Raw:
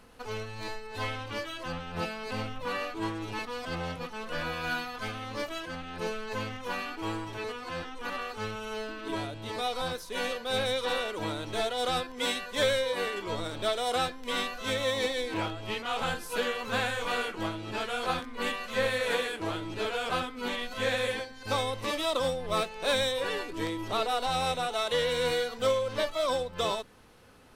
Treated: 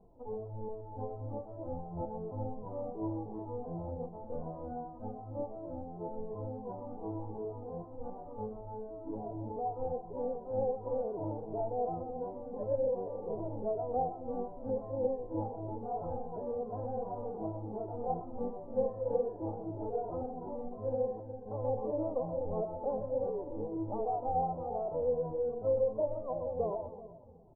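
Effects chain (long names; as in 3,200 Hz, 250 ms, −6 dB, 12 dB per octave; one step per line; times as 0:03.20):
Chebyshev low-pass filter 870 Hz, order 5
0:21.65–0:22.10: dynamic equaliser 450 Hz, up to +6 dB, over −47 dBFS, Q 1.7
echo with a time of its own for lows and highs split 300 Hz, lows 231 ms, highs 126 ms, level −8 dB
barber-pole flanger 2.3 ms −2.7 Hz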